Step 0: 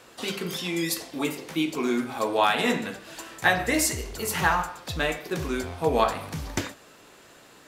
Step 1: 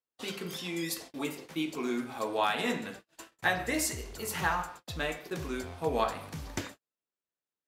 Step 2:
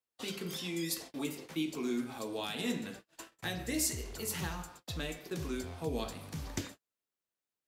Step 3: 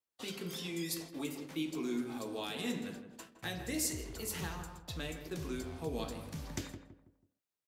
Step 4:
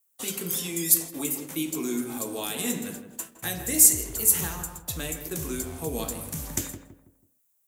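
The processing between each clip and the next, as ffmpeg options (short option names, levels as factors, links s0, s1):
-af "agate=range=0.00891:threshold=0.0112:ratio=16:detection=peak,volume=0.447"
-filter_complex "[0:a]acrossover=split=400|3000[s0][s1][s2];[s1]acompressor=threshold=0.00447:ratio=4[s3];[s0][s3][s2]amix=inputs=3:normalize=0"
-filter_complex "[0:a]asplit=2[s0][s1];[s1]adelay=163,lowpass=f=1100:p=1,volume=0.422,asplit=2[s2][s3];[s3]adelay=163,lowpass=f=1100:p=1,volume=0.39,asplit=2[s4][s5];[s5]adelay=163,lowpass=f=1100:p=1,volume=0.39,asplit=2[s6][s7];[s7]adelay=163,lowpass=f=1100:p=1,volume=0.39[s8];[s0][s2][s4][s6][s8]amix=inputs=5:normalize=0,volume=0.75"
-af "aexciter=amount=5.3:drive=6.1:freq=6600,volume=2.11"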